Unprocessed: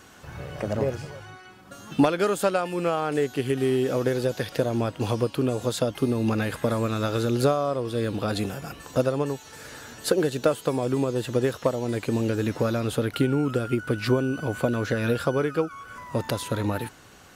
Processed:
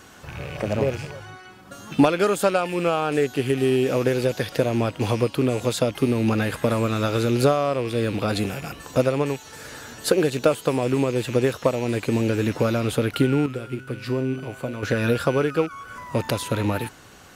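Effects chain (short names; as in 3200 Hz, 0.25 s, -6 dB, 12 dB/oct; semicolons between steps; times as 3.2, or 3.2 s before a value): rattling part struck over -37 dBFS, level -30 dBFS; 13.46–14.83 resonator 130 Hz, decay 0.62 s, harmonics all, mix 70%; gain +3 dB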